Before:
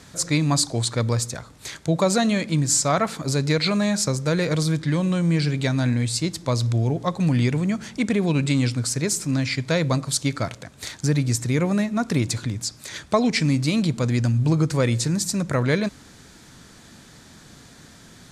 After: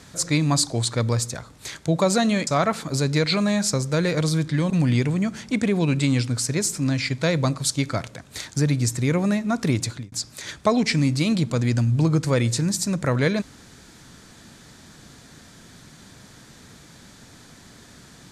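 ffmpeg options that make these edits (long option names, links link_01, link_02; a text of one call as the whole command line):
ffmpeg -i in.wav -filter_complex "[0:a]asplit=4[link_01][link_02][link_03][link_04];[link_01]atrim=end=2.472[link_05];[link_02]atrim=start=2.808:end=5.042[link_06];[link_03]atrim=start=7.168:end=12.59,asetpts=PTS-STARTPTS,afade=type=out:start_time=5.022:duration=0.4:curve=qsin[link_07];[link_04]atrim=start=12.59,asetpts=PTS-STARTPTS,afade=type=in:duration=0.004:curve=hsin[link_08];[link_05][link_06]acrossfade=duration=0.004:curve1=hsin:curve2=hsin[link_09];[link_07][link_08]concat=n=2:v=0:a=1[link_10];[link_09][link_10]acrossfade=duration=0.004:curve1=hsin:curve2=hsin" out.wav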